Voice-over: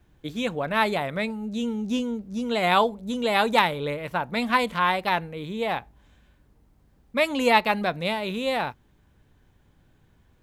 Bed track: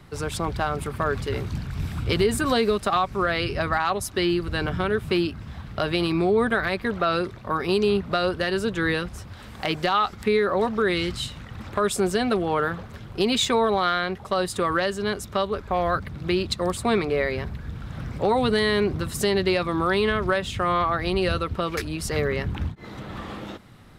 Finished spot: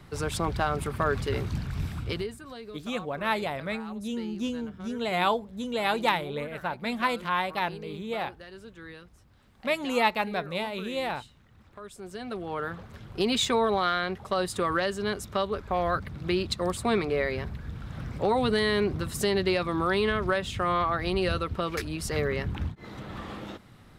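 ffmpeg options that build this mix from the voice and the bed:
-filter_complex "[0:a]adelay=2500,volume=0.562[s0];[1:a]volume=6.31,afade=t=out:st=1.74:d=0.62:silence=0.105925,afade=t=in:st=11.99:d=1.31:silence=0.133352[s1];[s0][s1]amix=inputs=2:normalize=0"

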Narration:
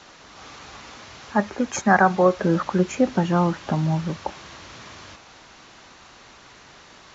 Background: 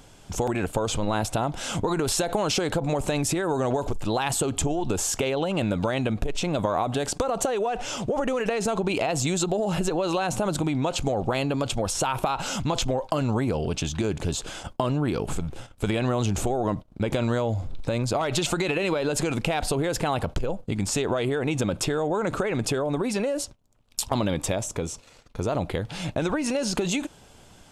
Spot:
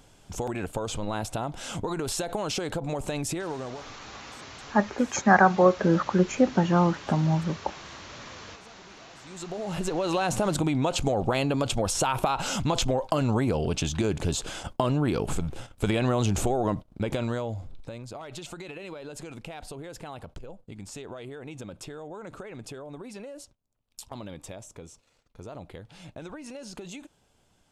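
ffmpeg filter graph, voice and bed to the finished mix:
-filter_complex "[0:a]adelay=3400,volume=0.841[s0];[1:a]volume=14.1,afade=t=out:st=3.34:d=0.6:silence=0.0707946,afade=t=in:st=9.24:d=1.01:silence=0.0375837,afade=t=out:st=16.53:d=1.47:silence=0.177828[s1];[s0][s1]amix=inputs=2:normalize=0"

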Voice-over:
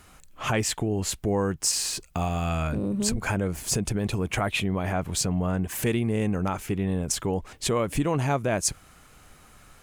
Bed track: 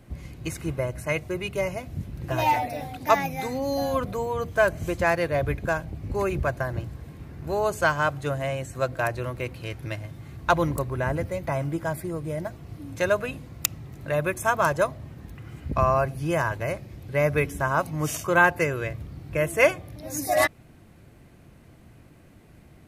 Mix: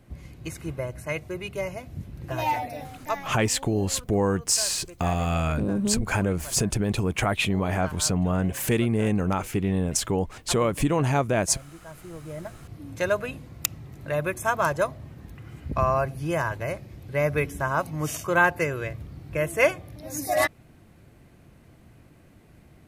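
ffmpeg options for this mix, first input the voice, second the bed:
-filter_complex "[0:a]adelay=2850,volume=1.26[s0];[1:a]volume=4.22,afade=t=out:st=2.83:d=0.51:silence=0.199526,afade=t=in:st=11.83:d=1.03:silence=0.158489[s1];[s0][s1]amix=inputs=2:normalize=0"

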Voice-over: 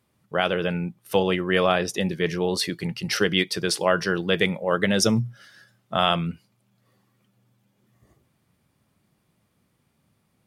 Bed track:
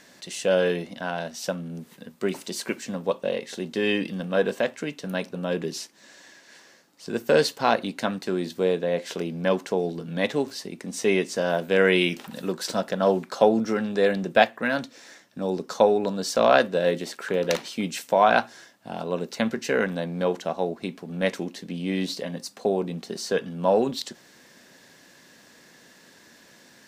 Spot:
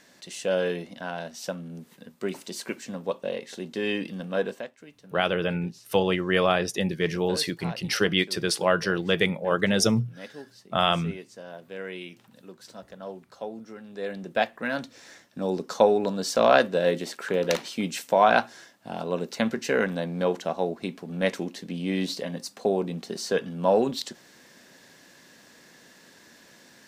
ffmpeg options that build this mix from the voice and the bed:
-filter_complex "[0:a]adelay=4800,volume=0.841[s0];[1:a]volume=4.47,afade=t=out:st=4.4:d=0.3:silence=0.211349,afade=t=in:st=13.83:d=1.41:silence=0.141254[s1];[s0][s1]amix=inputs=2:normalize=0"

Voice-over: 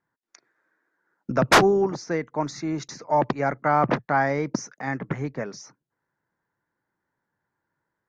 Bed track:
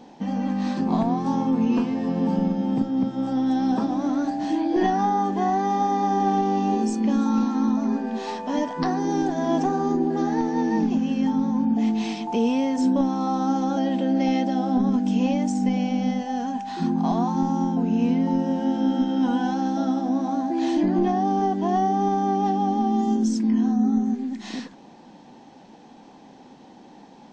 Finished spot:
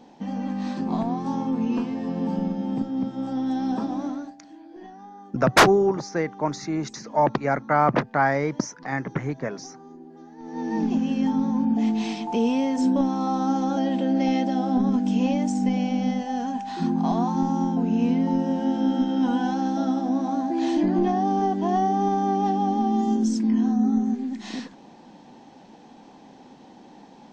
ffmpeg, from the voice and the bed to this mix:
-filter_complex "[0:a]adelay=4050,volume=1.12[s0];[1:a]volume=7.94,afade=t=out:st=4:d=0.36:silence=0.11885,afade=t=in:st=10.38:d=0.55:silence=0.0841395[s1];[s0][s1]amix=inputs=2:normalize=0"

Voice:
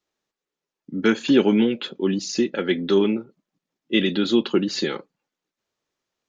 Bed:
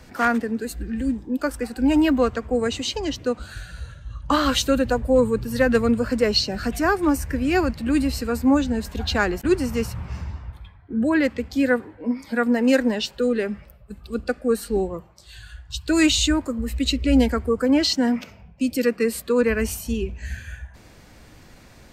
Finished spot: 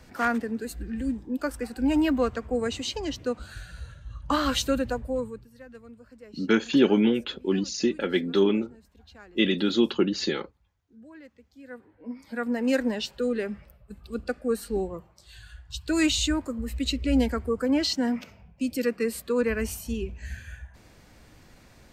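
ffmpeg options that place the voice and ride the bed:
-filter_complex "[0:a]adelay=5450,volume=0.708[s0];[1:a]volume=7.5,afade=t=out:st=4.69:d=0.81:silence=0.0707946,afade=t=in:st=11.63:d=1.2:silence=0.0749894[s1];[s0][s1]amix=inputs=2:normalize=0"

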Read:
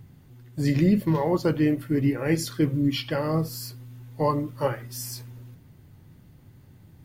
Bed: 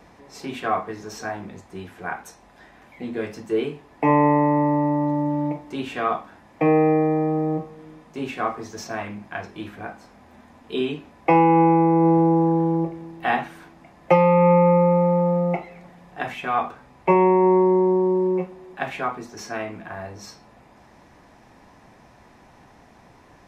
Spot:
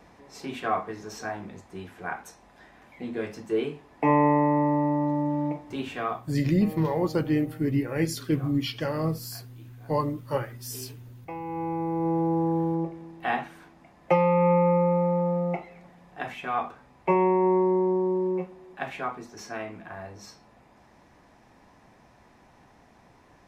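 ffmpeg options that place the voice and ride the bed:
-filter_complex "[0:a]adelay=5700,volume=0.75[s0];[1:a]volume=4.22,afade=t=out:st=5.86:d=0.59:silence=0.125893,afade=t=in:st=11.4:d=1.18:silence=0.158489[s1];[s0][s1]amix=inputs=2:normalize=0"

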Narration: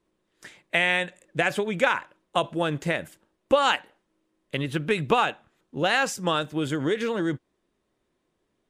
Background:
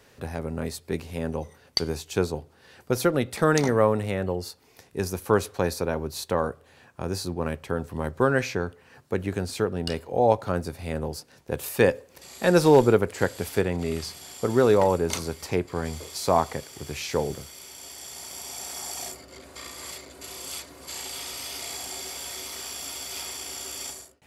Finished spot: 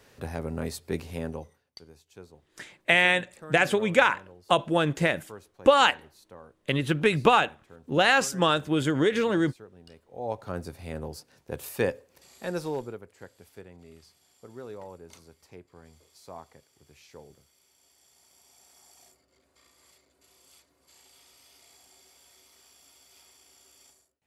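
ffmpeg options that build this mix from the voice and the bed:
-filter_complex "[0:a]adelay=2150,volume=1.26[s0];[1:a]volume=5.96,afade=t=out:st=1.11:d=0.54:silence=0.0841395,afade=t=in:st=10.07:d=0.56:silence=0.141254,afade=t=out:st=11.71:d=1.28:silence=0.149624[s1];[s0][s1]amix=inputs=2:normalize=0"

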